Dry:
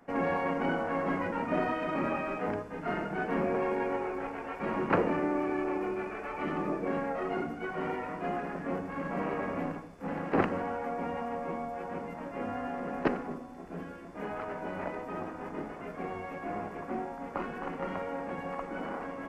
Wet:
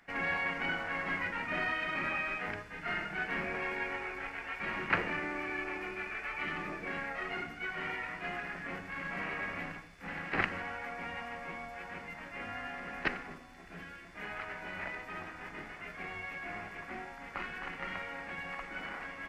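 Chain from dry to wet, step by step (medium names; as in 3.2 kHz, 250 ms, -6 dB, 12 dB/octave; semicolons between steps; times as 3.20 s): graphic EQ 125/250/500/1000/2000/4000 Hz -4/-10/-10/-6/+8/+6 dB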